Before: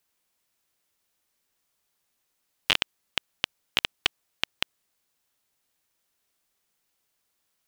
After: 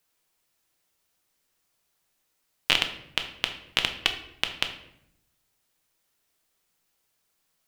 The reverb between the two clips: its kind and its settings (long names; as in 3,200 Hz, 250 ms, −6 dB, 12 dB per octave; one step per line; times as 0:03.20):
rectangular room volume 180 cubic metres, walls mixed, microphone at 0.54 metres
level +1 dB